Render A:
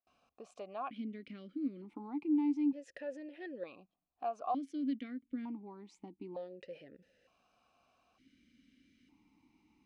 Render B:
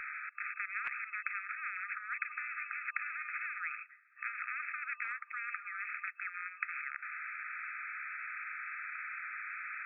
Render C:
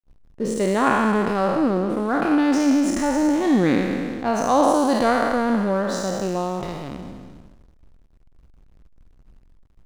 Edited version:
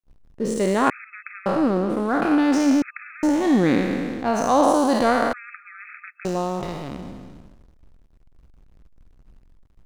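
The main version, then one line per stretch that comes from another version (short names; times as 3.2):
C
0.9–1.46 from B
2.82–3.23 from B
5.33–6.25 from B
not used: A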